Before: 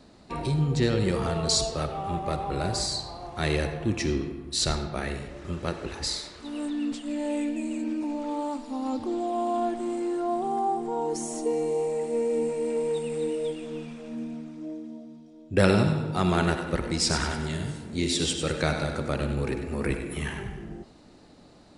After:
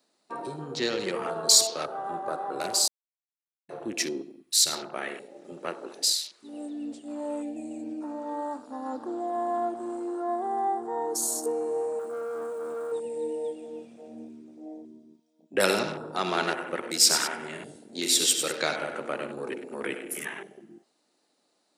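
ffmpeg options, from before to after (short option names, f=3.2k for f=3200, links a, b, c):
-filter_complex "[0:a]asettb=1/sr,asplit=3[a][b][c];[a]atrim=end=4.224[d];[b]atrim=start=4.22:end=4.73,asetpts=PTS-STARTPTS,afade=t=in:d=0.004:c=qsin,afade=t=out:st=0.506:d=0.004:c=qsin,equalizer=f=750:w=0.44:g=-8.5[e];[c]atrim=start=4.726[f];[d][e]acrossfade=d=0.004:c1=hsin:c2=qsin[g];[g][f]acrossfade=d=0.004:c1=qsin:c2=hsin,asettb=1/sr,asplit=3[h][i][j];[h]atrim=end=11.994[k];[i]atrim=start=11.99:end=12.92,asetpts=PTS-STARTPTS,afade=t=in:d=0.004:c=qsin,afade=t=out:st=0.926:d=0.004:c=qsin,asoftclip=type=hard:threshold=-29.5dB[l];[j]atrim=start=12.916[m];[k][l]acrossfade=d=0.004:c1=hsin:c2=qsin[n];[n][m]acrossfade=d=0.004:c1=qsin:c2=hsin,asplit=3[o][p][q];[o]atrim=end=2.88,asetpts=PTS-STARTPTS,afade=t=out:st=2.876:d=0.004:c=hsin[r];[p]atrim=start=2.88:end=3.69,asetpts=PTS-STARTPTS,volume=0[s];[q]atrim=start=3.69,asetpts=PTS-STARTPTS,afade=t=in:d=0.004:c=hsin[t];[r][s][t]concat=n=3:v=0:a=1,highpass=270,aemphasis=mode=production:type=bsi,afwtdn=0.0141"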